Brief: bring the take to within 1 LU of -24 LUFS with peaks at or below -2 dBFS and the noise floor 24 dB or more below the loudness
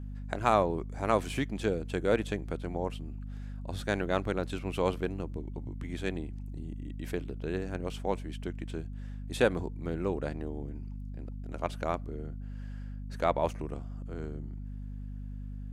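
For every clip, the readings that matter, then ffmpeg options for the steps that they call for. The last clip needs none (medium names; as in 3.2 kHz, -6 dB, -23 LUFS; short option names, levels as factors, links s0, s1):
hum 50 Hz; highest harmonic 250 Hz; hum level -37 dBFS; loudness -34.5 LUFS; peak level -10.5 dBFS; loudness target -24.0 LUFS
-> -af "bandreject=f=50:t=h:w=4,bandreject=f=100:t=h:w=4,bandreject=f=150:t=h:w=4,bandreject=f=200:t=h:w=4,bandreject=f=250:t=h:w=4"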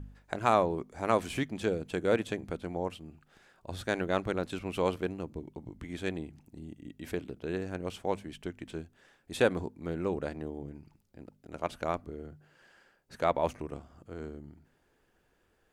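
hum not found; loudness -33.5 LUFS; peak level -10.5 dBFS; loudness target -24.0 LUFS
-> -af "volume=2.99,alimiter=limit=0.794:level=0:latency=1"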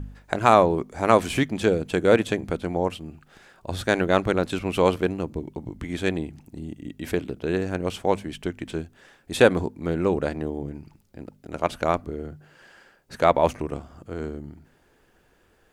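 loudness -24.5 LUFS; peak level -2.0 dBFS; noise floor -61 dBFS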